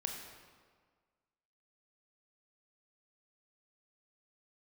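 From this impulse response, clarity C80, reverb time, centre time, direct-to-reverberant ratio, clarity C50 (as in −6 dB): 5.0 dB, 1.6 s, 52 ms, 2.0 dB, 4.0 dB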